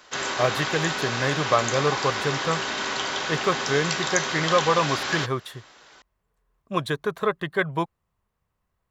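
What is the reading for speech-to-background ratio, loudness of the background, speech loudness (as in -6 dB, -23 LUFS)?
0.5 dB, -26.5 LUFS, -26.0 LUFS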